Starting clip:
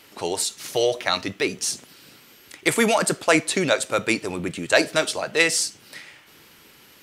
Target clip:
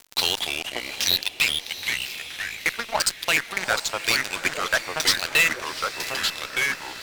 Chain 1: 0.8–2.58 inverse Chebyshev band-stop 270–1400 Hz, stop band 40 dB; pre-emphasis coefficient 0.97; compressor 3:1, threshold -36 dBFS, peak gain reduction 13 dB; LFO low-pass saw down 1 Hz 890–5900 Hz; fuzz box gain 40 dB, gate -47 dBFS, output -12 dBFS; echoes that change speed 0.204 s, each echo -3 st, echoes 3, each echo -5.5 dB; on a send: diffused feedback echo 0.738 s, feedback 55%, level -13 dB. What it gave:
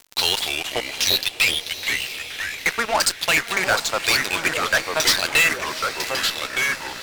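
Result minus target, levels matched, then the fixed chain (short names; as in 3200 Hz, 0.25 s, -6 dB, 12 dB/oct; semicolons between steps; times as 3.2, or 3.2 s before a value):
compressor: peak gain reduction -5 dB
0.8–2.58 inverse Chebyshev band-stop 270–1400 Hz, stop band 40 dB; pre-emphasis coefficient 0.97; compressor 3:1, threshold -43.5 dBFS, peak gain reduction 18 dB; LFO low-pass saw down 1 Hz 890–5900 Hz; fuzz box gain 40 dB, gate -47 dBFS, output -12 dBFS; echoes that change speed 0.204 s, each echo -3 st, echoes 3, each echo -5.5 dB; on a send: diffused feedback echo 0.738 s, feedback 55%, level -13 dB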